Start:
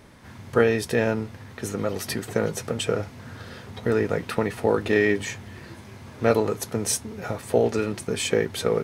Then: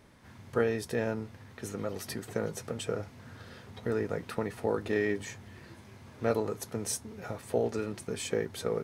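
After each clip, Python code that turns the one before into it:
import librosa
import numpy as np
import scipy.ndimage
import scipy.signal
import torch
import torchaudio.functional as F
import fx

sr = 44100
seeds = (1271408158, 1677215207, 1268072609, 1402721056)

y = fx.dynamic_eq(x, sr, hz=2700.0, q=1.3, threshold_db=-40.0, ratio=4.0, max_db=-4)
y = y * librosa.db_to_amplitude(-8.5)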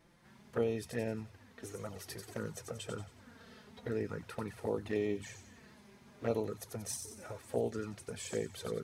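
y = fx.env_flanger(x, sr, rest_ms=6.3, full_db=-25.0)
y = fx.echo_wet_highpass(y, sr, ms=91, feedback_pct=44, hz=3600.0, wet_db=-5)
y = y * librosa.db_to_amplitude(-3.5)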